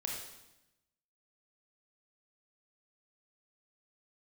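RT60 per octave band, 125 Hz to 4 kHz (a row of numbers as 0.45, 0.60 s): 1.2, 1.1, 0.95, 0.90, 0.90, 0.90 s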